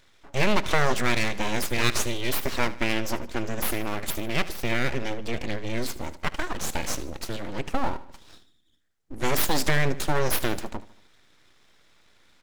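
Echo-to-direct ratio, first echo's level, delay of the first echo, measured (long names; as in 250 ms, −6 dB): −16.0 dB, −17.0 dB, 76 ms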